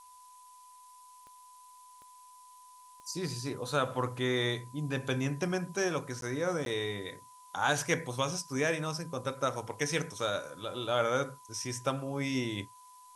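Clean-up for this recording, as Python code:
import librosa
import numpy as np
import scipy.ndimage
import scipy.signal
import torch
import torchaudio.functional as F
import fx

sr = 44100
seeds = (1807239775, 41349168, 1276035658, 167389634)

y = fx.fix_declick_ar(x, sr, threshold=10.0)
y = fx.notch(y, sr, hz=1000.0, q=30.0)
y = fx.fix_interpolate(y, sr, at_s=(6.21, 6.65), length_ms=12.0)
y = fx.noise_reduce(y, sr, print_start_s=2.5, print_end_s=3.0, reduce_db=23.0)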